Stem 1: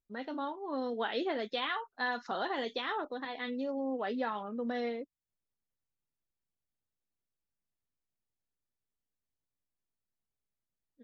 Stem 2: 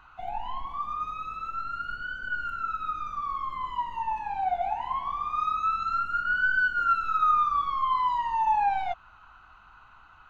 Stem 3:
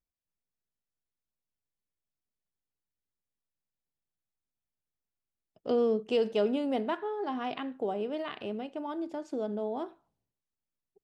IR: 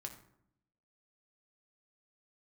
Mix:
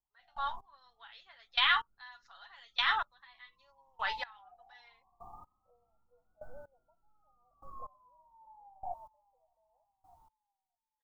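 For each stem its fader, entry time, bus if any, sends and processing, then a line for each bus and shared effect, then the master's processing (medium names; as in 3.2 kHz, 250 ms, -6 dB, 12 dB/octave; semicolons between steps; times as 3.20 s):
+2.5 dB, 0.00 s, no send, no echo send, high-pass 1 kHz 24 dB/octave; comb 7.1 ms, depth 43%
-13.5 dB, 0.00 s, no send, echo send -17 dB, steep low-pass 910 Hz 48 dB/octave
-19.5 dB, 0.00 s, no send, no echo send, FFT band-pass 480–970 Hz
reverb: none
echo: feedback delay 610 ms, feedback 46%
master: treble shelf 3.8 kHz +5.5 dB; level rider gain up to 5 dB; trance gate "...xx....." 124 bpm -24 dB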